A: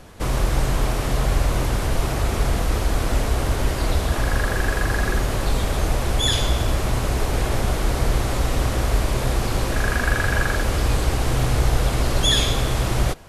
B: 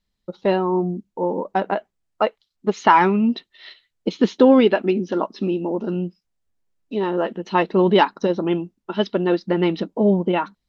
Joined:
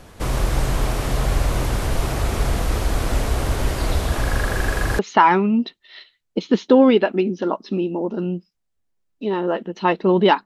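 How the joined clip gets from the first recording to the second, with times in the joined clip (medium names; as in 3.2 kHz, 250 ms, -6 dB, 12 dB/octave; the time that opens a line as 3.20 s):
A
4.99 s: go over to B from 2.69 s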